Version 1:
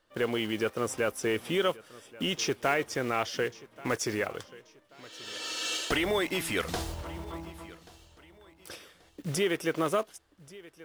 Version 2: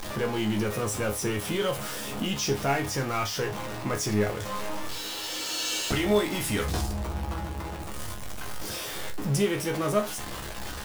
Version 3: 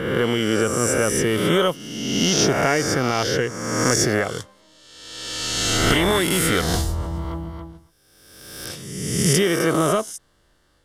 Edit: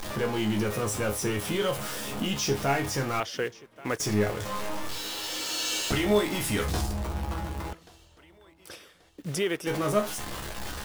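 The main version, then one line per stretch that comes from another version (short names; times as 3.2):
2
3.2–4 from 1
7.73–9.67 from 1
not used: 3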